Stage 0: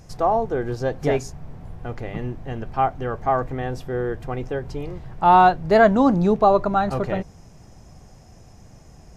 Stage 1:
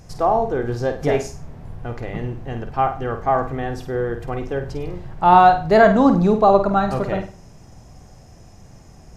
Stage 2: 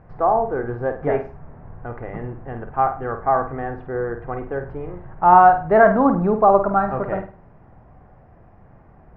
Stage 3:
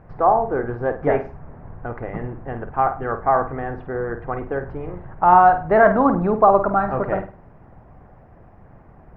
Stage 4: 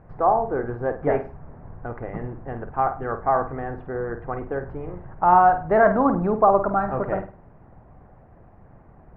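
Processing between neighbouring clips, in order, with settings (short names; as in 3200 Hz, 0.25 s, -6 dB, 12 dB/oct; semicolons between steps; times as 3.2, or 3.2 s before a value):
flutter echo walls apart 8.7 m, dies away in 0.37 s; gain +1.5 dB
LPF 1700 Hz 24 dB/oct; low shelf 490 Hz -7.5 dB; gain +2.5 dB
harmonic-percussive split percussive +6 dB; gain -1.5 dB
LPF 2300 Hz 6 dB/oct; gain -2.5 dB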